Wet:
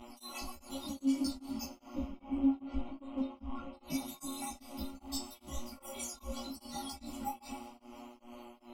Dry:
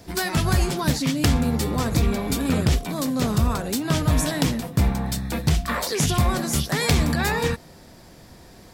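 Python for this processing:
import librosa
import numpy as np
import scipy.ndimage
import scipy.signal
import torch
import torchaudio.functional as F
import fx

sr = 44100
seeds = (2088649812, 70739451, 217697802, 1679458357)

y = fx.spec_dropout(x, sr, seeds[0], share_pct=58)
y = fx.lowpass(y, sr, hz=1300.0, slope=12, at=(1.63, 3.83))
y = fx.rider(y, sr, range_db=10, speed_s=0.5)
y = fx.stiff_resonator(y, sr, f0_hz=270.0, decay_s=0.41, stiffness=0.002)
y = np.clip(y, -10.0 ** (-28.0 / 20.0), 10.0 ** (-28.0 / 20.0))
y = fx.dmg_buzz(y, sr, base_hz=120.0, harmonics=27, level_db=-51.0, tilt_db=-5, odd_only=False)
y = fx.chorus_voices(y, sr, voices=4, hz=0.95, base_ms=16, depth_ms=3.0, mix_pct=55)
y = fx.fixed_phaser(y, sr, hz=450.0, stages=6)
y = fx.rev_plate(y, sr, seeds[1], rt60_s=2.2, hf_ratio=0.65, predelay_ms=80, drr_db=11.5)
y = y * np.abs(np.cos(np.pi * 2.5 * np.arange(len(y)) / sr))
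y = y * 10.0 ** (10.0 / 20.0)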